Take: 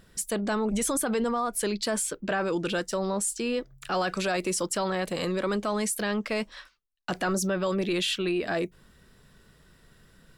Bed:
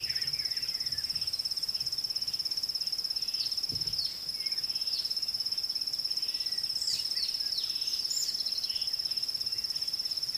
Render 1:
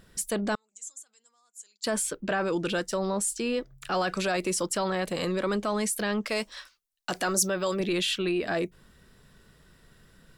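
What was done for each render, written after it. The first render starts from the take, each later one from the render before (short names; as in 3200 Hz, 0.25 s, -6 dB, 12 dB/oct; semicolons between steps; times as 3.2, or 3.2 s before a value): 0.55–1.84 band-pass 7100 Hz, Q 12; 6.26–7.8 tone controls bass -6 dB, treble +8 dB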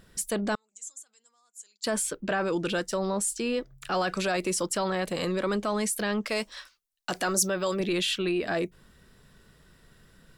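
nothing audible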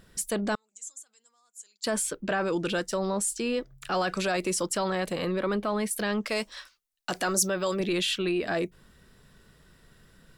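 5.15–5.91 bell 7000 Hz -15 dB 0.81 oct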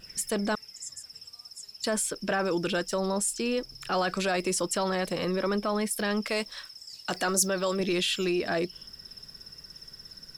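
add bed -14 dB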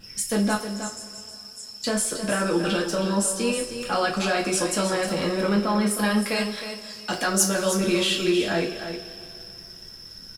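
echo 0.314 s -9.5 dB; two-slope reverb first 0.27 s, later 2.9 s, from -20 dB, DRR -2 dB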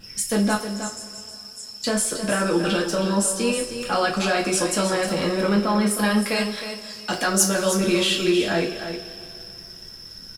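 gain +2 dB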